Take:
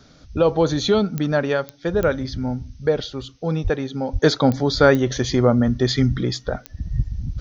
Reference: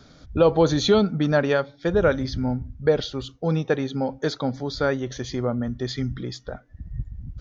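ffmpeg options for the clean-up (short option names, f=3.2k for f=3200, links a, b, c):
-filter_complex "[0:a]adeclick=t=4,asplit=3[a][b][c];[a]afade=t=out:st=3.63:d=0.02[d];[b]highpass=f=140:w=0.5412,highpass=f=140:w=1.3066,afade=t=in:st=3.63:d=0.02,afade=t=out:st=3.75:d=0.02[e];[c]afade=t=in:st=3.75:d=0.02[f];[d][e][f]amix=inputs=3:normalize=0,asplit=3[g][h][i];[g]afade=t=out:st=4.12:d=0.02[j];[h]highpass=f=140:w=0.5412,highpass=f=140:w=1.3066,afade=t=in:st=4.12:d=0.02,afade=t=out:st=4.24:d=0.02[k];[i]afade=t=in:st=4.24:d=0.02[l];[j][k][l]amix=inputs=3:normalize=0,agate=range=-21dB:threshold=-36dB,asetnsamples=n=441:p=0,asendcmd='4.22 volume volume -9dB',volume=0dB"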